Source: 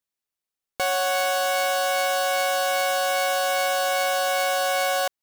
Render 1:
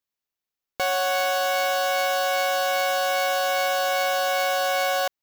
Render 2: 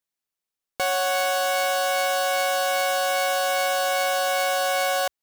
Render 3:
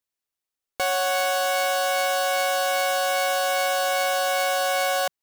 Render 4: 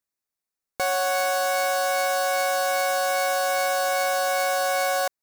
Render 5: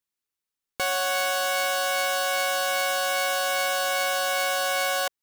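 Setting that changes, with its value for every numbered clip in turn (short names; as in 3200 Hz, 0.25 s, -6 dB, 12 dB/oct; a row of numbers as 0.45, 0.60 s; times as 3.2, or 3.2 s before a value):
bell, frequency: 9100, 62, 170, 3100, 650 Hz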